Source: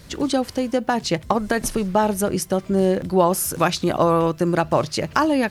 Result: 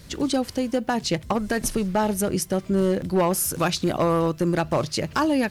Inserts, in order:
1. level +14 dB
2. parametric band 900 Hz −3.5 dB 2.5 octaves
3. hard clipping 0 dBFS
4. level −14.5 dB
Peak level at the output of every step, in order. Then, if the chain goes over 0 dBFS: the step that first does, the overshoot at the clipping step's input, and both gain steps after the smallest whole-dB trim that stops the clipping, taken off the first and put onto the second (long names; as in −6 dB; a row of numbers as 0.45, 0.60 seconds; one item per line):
+8.5, +7.0, 0.0, −14.5 dBFS
step 1, 7.0 dB
step 1 +7 dB, step 4 −7.5 dB